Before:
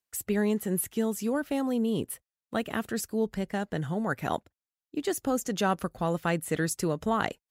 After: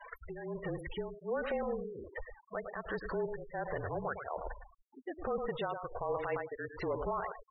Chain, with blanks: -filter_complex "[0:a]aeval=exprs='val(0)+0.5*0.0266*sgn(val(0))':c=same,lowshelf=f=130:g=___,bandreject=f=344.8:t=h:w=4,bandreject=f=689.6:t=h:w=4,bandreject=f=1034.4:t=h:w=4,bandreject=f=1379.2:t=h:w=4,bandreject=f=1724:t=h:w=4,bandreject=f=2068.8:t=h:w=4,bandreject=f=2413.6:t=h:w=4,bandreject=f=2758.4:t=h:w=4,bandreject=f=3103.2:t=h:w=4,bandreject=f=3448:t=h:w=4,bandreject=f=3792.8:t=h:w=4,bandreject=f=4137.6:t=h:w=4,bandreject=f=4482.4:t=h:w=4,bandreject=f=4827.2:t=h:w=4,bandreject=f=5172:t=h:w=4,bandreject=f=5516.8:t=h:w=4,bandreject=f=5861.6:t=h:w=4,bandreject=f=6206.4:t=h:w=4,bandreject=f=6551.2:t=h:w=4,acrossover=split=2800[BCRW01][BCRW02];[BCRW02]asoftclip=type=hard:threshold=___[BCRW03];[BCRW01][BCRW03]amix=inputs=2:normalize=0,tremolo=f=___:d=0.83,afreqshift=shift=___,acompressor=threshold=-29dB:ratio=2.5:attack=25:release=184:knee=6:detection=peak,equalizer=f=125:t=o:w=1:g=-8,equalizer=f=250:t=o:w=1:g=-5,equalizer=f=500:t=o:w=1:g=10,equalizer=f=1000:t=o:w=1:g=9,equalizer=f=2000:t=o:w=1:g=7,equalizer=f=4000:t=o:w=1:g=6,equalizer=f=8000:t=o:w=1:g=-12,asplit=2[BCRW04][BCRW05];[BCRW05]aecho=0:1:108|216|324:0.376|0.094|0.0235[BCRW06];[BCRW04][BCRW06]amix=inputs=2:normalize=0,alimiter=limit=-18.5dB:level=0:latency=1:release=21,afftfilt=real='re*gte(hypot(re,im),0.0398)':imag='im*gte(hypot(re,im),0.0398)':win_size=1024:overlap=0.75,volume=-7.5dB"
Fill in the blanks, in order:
10.5, -32.5dB, 1.3, -34